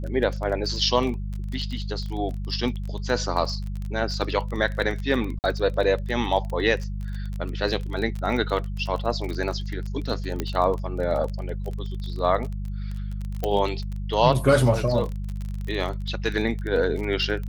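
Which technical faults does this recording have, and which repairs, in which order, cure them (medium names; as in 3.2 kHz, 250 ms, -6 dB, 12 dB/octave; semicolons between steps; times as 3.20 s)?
crackle 26 per s -29 dBFS
hum 50 Hz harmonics 4 -30 dBFS
5.39–5.44 s: dropout 49 ms
10.40 s: pop -12 dBFS
13.44 s: pop -12 dBFS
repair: de-click; de-hum 50 Hz, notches 4; interpolate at 5.39 s, 49 ms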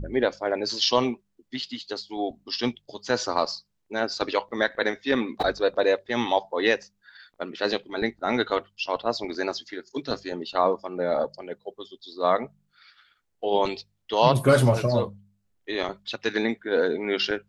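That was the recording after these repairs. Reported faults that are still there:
nothing left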